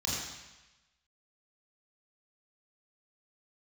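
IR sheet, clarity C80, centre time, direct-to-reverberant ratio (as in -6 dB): 1.0 dB, 85 ms, -6.0 dB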